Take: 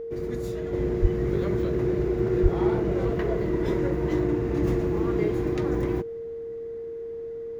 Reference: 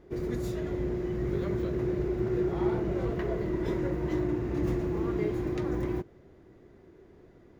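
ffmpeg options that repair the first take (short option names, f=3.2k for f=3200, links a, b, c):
-filter_complex "[0:a]bandreject=f=460:w=30,asplit=3[a][b][c];[a]afade=t=out:st=1.01:d=0.02[d];[b]highpass=f=140:w=0.5412,highpass=f=140:w=1.3066,afade=t=in:st=1.01:d=0.02,afade=t=out:st=1.13:d=0.02[e];[c]afade=t=in:st=1.13:d=0.02[f];[d][e][f]amix=inputs=3:normalize=0,asplit=3[g][h][i];[g]afade=t=out:st=2.42:d=0.02[j];[h]highpass=f=140:w=0.5412,highpass=f=140:w=1.3066,afade=t=in:st=2.42:d=0.02,afade=t=out:st=2.54:d=0.02[k];[i]afade=t=in:st=2.54:d=0.02[l];[j][k][l]amix=inputs=3:normalize=0,asetnsamples=n=441:p=0,asendcmd='0.73 volume volume -4.5dB',volume=0dB"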